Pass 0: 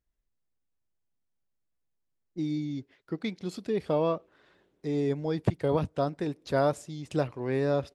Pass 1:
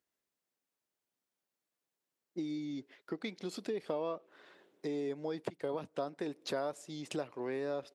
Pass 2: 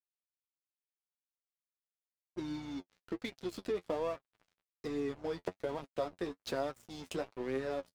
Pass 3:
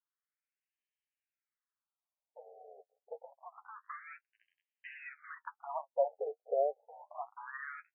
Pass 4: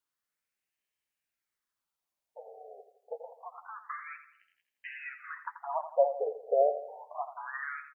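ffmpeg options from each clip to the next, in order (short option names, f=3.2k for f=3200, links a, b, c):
-af "acompressor=threshold=-36dB:ratio=6,highpass=280,volume=3.5dB"
-af "aeval=exprs='val(0)+0.002*(sin(2*PI*60*n/s)+sin(2*PI*2*60*n/s)/2+sin(2*PI*3*60*n/s)/3+sin(2*PI*4*60*n/s)/4+sin(2*PI*5*60*n/s)/5)':c=same,aeval=exprs='sgn(val(0))*max(abs(val(0))-0.00422,0)':c=same,flanger=delay=7.3:depth=4.2:regen=33:speed=1.2:shape=sinusoidal,volume=5.5dB"
-af "afftfilt=real='re*between(b*sr/1024,550*pow(2300/550,0.5+0.5*sin(2*PI*0.27*pts/sr))/1.41,550*pow(2300/550,0.5+0.5*sin(2*PI*0.27*pts/sr))*1.41)':imag='im*between(b*sr/1024,550*pow(2300/550,0.5+0.5*sin(2*PI*0.27*pts/sr))/1.41,550*pow(2300/550,0.5+0.5*sin(2*PI*0.27*pts/sr))*1.41)':win_size=1024:overlap=0.75,volume=6.5dB"
-af "aecho=1:1:84|168|252|336|420:0.282|0.127|0.0571|0.0257|0.0116,volume=5.5dB"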